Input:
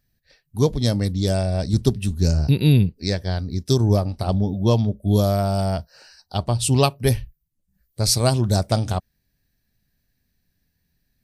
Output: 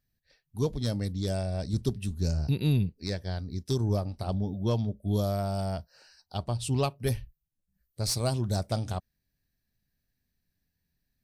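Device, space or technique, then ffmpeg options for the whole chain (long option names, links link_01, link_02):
saturation between pre-emphasis and de-emphasis: -filter_complex "[0:a]asettb=1/sr,asplit=3[link_01][link_02][link_03];[link_01]atrim=end=6.574[link_04];[link_02]atrim=start=6.57:end=7.01,asetpts=PTS-STARTPTS,afade=type=in:duration=0.004:curve=qsin,afade=type=out:start_time=0.436:duration=0.004:curve=qsin,highshelf=frequency=5500:gain=-6.5[link_05];[link_03]atrim=start=7.006[link_06];[link_04][link_05]acrossfade=duration=0.004:curve1=hsin:curve2=qsin[link_07];[link_07][link_06]acrossfade=duration=0.004:curve1=qsin:curve2=hsin,highshelf=frequency=2100:gain=8.5,asoftclip=type=tanh:threshold=-4.5dB,highshelf=frequency=2100:gain=-8.5,volume=-9dB"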